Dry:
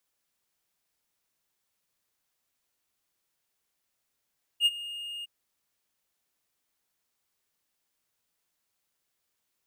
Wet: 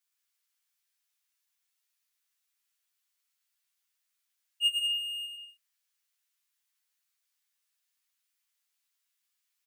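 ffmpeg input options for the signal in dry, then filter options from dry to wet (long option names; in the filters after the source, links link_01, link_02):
-f lavfi -i "aevalsrc='0.168*(1-4*abs(mod(2840*t+0.25,1)-0.5))':duration=0.66:sample_rate=44100,afade=type=in:duration=0.058,afade=type=out:start_time=0.058:duration=0.037:silence=0.126,afade=type=out:start_time=0.64:duration=0.02"
-filter_complex "[0:a]highpass=1500,aecho=1:1:110|187|240.9|278.6|305:0.631|0.398|0.251|0.158|0.1,asplit=2[link_01][link_02];[link_02]adelay=11.7,afreqshift=-0.56[link_03];[link_01][link_03]amix=inputs=2:normalize=1"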